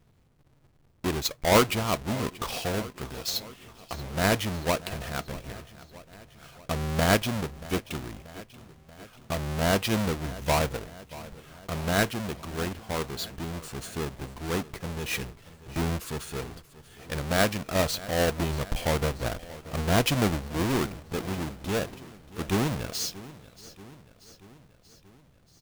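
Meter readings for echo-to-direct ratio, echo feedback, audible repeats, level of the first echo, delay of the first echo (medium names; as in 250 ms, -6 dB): -16.0 dB, 60%, 4, -18.0 dB, 633 ms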